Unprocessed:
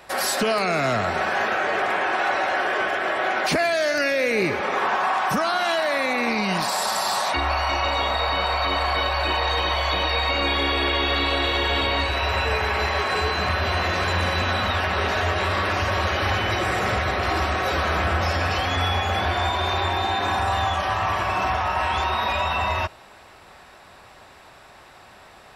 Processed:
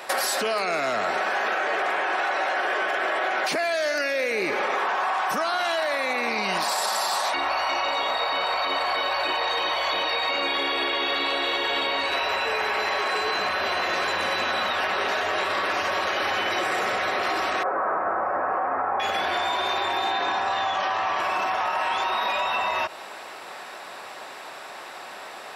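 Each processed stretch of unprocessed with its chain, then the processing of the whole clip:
0:17.63–0:19.00: inverse Chebyshev low-pass filter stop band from 3,200 Hz, stop band 50 dB + spectral tilt +3 dB per octave
0:20.11–0:21.20: low-pass filter 6,400 Hz 24 dB per octave + double-tracking delay 21 ms −13.5 dB
whole clip: brickwall limiter −20 dBFS; high-pass filter 340 Hz 12 dB per octave; downward compressor, threshold −31 dBFS; level +9 dB

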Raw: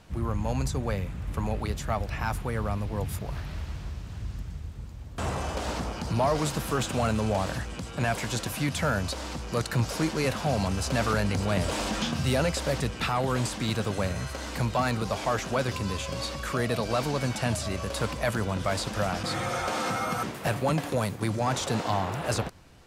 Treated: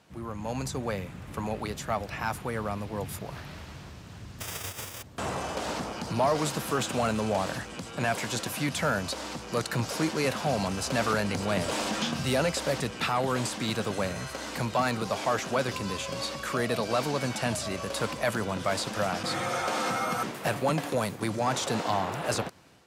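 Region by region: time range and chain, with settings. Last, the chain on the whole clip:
0:04.40–0:05.01: spectral envelope flattened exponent 0.3 + Butterworth band-reject 4,200 Hz, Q 6.7 + parametric band 99 Hz +13.5 dB 0.43 octaves
whole clip: Bessel high-pass filter 170 Hz, order 2; automatic gain control gain up to 5 dB; level −4.5 dB

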